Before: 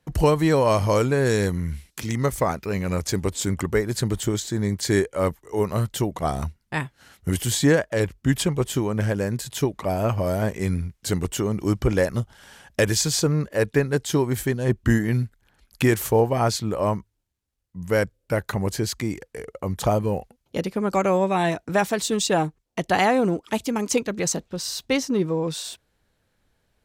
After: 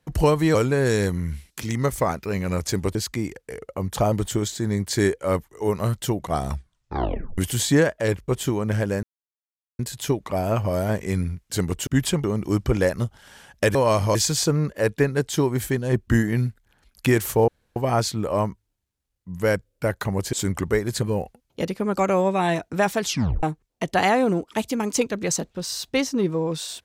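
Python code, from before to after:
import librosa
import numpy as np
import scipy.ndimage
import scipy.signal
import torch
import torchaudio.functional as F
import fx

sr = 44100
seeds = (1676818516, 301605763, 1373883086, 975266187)

y = fx.edit(x, sr, fx.move(start_s=0.55, length_s=0.4, to_s=12.91),
    fx.swap(start_s=3.35, length_s=0.69, other_s=18.81, other_length_s=1.17),
    fx.tape_stop(start_s=6.38, length_s=0.92),
    fx.move(start_s=8.2, length_s=0.37, to_s=11.4),
    fx.insert_silence(at_s=9.32, length_s=0.76),
    fx.insert_room_tone(at_s=16.24, length_s=0.28),
    fx.tape_stop(start_s=21.98, length_s=0.41), tone=tone)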